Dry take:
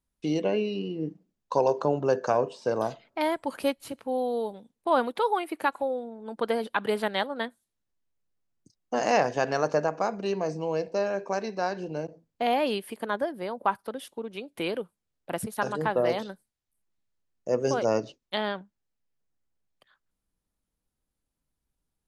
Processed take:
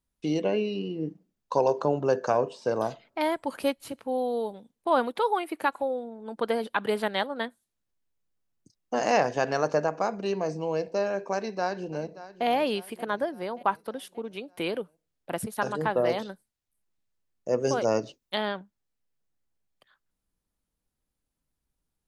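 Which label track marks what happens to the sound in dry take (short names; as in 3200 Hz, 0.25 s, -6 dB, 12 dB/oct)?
11.340000	12.460000	echo throw 0.58 s, feedback 55%, level -15.5 dB
17.630000	18.450000	high shelf 10000 Hz +9 dB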